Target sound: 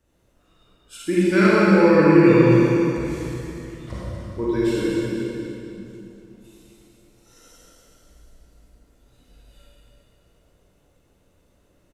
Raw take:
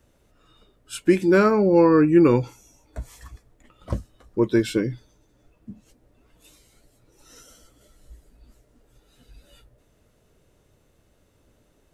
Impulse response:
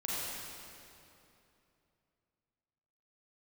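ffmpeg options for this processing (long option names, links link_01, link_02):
-filter_complex "[0:a]asettb=1/sr,asplit=3[link_01][link_02][link_03];[link_01]atrim=end=1.174[link_04];[link_02]atrim=start=1.17:end=3.92,asetpts=PTS-STARTPTS,afade=type=in:duration=0.004:curve=qsin,afade=type=out:start_time=2.746:duration=0.004:curve=qsin,equalizer=frequency=125:width_type=o:width=1:gain=7,equalizer=frequency=1000:width_type=o:width=1:gain=-3,equalizer=frequency=2000:width_type=o:width=1:gain=10,equalizer=frequency=4000:width_type=o:width=1:gain=7,equalizer=frequency=8000:width_type=o:width=1:gain=4[link_05];[link_03]atrim=start=3.916[link_06];[link_04][link_05]acrossfade=duration=0.004:curve1=hsin:curve2=qsin[link_07];[link_07][link_06]acrossfade=duration=0.004:curve1=qsin:curve2=hsin,aecho=1:1:245|490|735|980|1225:0.355|0.163|0.0751|0.0345|0.0159[link_08];[1:a]atrim=start_sample=2205[link_09];[link_08][link_09]afir=irnorm=-1:irlink=0,volume=-5dB"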